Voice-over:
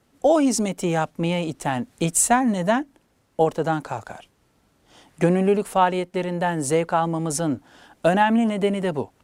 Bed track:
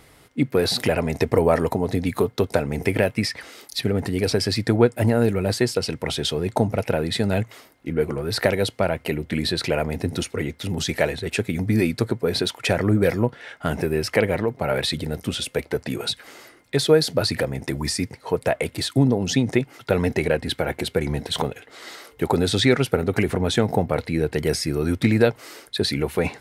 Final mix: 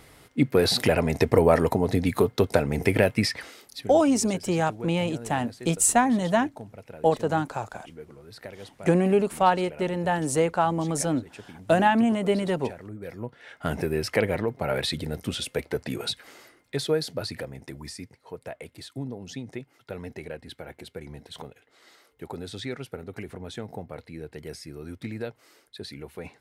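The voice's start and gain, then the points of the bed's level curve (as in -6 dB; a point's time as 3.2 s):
3.65 s, -2.0 dB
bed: 3.42 s -0.5 dB
4.07 s -21 dB
12.99 s -21 dB
13.6 s -4 dB
16.09 s -4 dB
18.3 s -16.5 dB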